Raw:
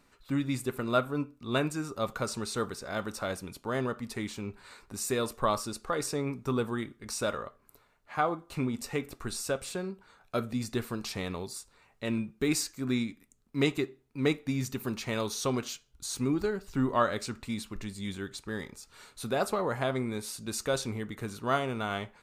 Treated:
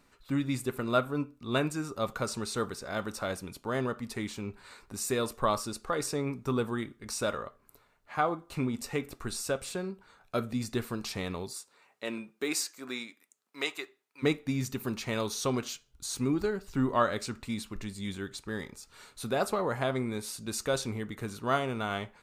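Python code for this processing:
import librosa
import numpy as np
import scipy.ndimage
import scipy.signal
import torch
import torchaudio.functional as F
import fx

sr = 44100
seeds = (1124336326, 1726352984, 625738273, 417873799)

y = fx.highpass(x, sr, hz=fx.line((11.52, 260.0), (14.22, 930.0)), slope=12, at=(11.52, 14.22), fade=0.02)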